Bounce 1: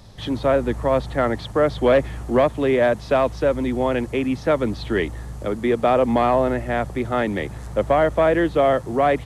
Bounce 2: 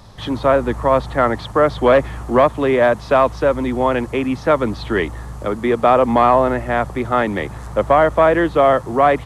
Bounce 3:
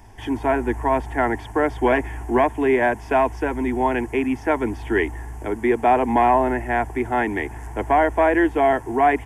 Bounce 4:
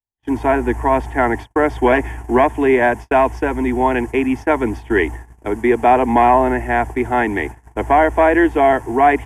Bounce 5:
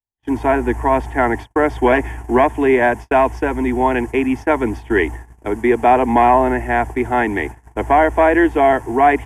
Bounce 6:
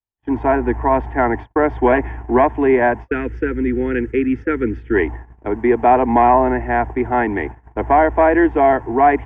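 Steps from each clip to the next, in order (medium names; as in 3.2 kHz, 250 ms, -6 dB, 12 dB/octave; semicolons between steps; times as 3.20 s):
peaking EQ 1.1 kHz +7.5 dB 0.96 oct; trim +2 dB
static phaser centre 820 Hz, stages 8
gate -30 dBFS, range -57 dB; trim +4.5 dB
no audible change
low-pass 1.9 kHz 12 dB/octave; time-frequency box 3.08–4.94 s, 520–1200 Hz -22 dB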